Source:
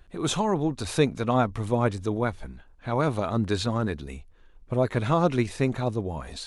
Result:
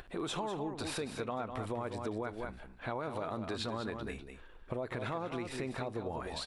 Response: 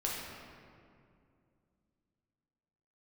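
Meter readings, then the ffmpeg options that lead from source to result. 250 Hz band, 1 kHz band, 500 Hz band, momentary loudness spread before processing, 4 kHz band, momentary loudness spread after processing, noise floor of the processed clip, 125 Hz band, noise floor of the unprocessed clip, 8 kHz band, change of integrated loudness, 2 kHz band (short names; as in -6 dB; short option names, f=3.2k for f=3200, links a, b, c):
-13.0 dB, -10.5 dB, -11.5 dB, 11 LU, -7.5 dB, 7 LU, -53 dBFS, -16.0 dB, -54 dBFS, -10.5 dB, -12.5 dB, -8.0 dB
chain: -filter_complex "[0:a]acompressor=mode=upward:threshold=-38dB:ratio=2.5,alimiter=limit=-20dB:level=0:latency=1:release=94,bass=f=250:g=-9,treble=f=4k:g=-6,bandreject=f=6.4k:w=9.6,aecho=1:1:198:0.376,asplit=2[a][b];[1:a]atrim=start_sample=2205,atrim=end_sample=3528[c];[b][c]afir=irnorm=-1:irlink=0,volume=-19.5dB[d];[a][d]amix=inputs=2:normalize=0,acompressor=threshold=-34dB:ratio=6"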